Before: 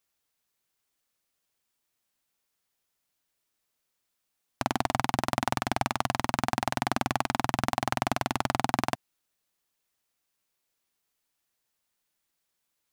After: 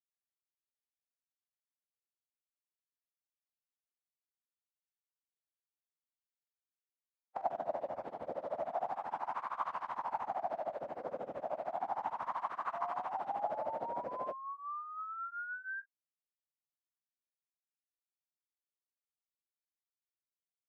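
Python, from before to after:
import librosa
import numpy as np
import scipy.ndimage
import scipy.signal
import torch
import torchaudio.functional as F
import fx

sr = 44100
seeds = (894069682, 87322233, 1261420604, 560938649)

y = fx.backlash(x, sr, play_db=-19.0)
y = fx.wah_lfo(y, sr, hz=0.54, low_hz=520.0, high_hz=1100.0, q=5.1)
y = fx.spec_paint(y, sr, seeds[0], shape='rise', start_s=7.96, length_s=1.93, low_hz=680.0, high_hz=1600.0, level_db=-42.0)
y = fx.stretch_vocoder_free(y, sr, factor=1.6)
y = y * 10.0 ** (2.0 / 20.0)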